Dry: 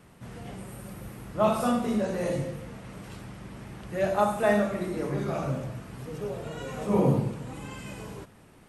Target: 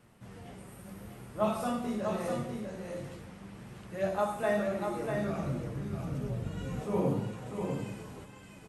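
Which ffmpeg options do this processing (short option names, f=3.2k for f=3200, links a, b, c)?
-filter_complex "[0:a]flanger=delay=8.2:depth=4.2:regen=48:speed=0.8:shape=triangular,aecho=1:1:646:0.531,asettb=1/sr,asplit=3[a][b][c];[a]atrim=end=4.974[d];[b]atrim=start=4.97:end=6.81,asetpts=PTS-STARTPTS,afade=t=in:d=0.004:c=qsin,afade=t=out:st=1.836:d=0.004:c=qsin,asubboost=boost=7.5:cutoff=250[e];[c]atrim=start=6.806[f];[d][e]acrossfade=d=0.004:c1=hsin:c2=qsin[g];[g][f]acrossfade=d=0.004:c1=qsin:c2=hsin,volume=-2.5dB"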